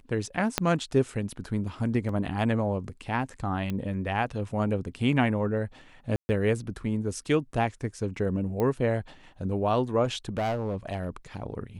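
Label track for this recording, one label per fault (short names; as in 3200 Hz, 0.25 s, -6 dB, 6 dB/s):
0.580000	0.580000	pop -7 dBFS
2.090000	2.090000	gap 2.8 ms
3.700000	3.700000	pop -19 dBFS
6.160000	6.290000	gap 0.13 s
8.600000	8.600000	pop -17 dBFS
10.040000	11.090000	clipped -24.5 dBFS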